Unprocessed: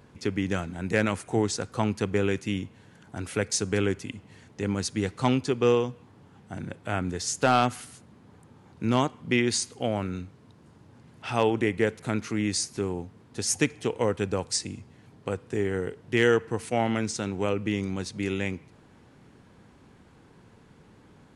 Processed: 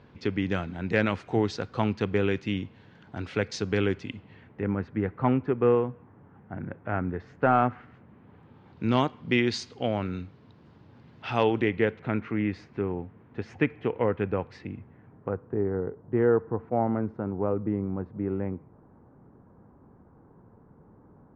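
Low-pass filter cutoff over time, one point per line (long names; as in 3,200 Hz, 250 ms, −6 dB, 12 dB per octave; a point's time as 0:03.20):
low-pass filter 24 dB per octave
0:04.14 4,400 Hz
0:04.71 1,900 Hz
0:07.81 1,900 Hz
0:08.84 4,600 Hz
0:11.50 4,600 Hz
0:12.22 2,400 Hz
0:14.66 2,400 Hz
0:15.64 1,200 Hz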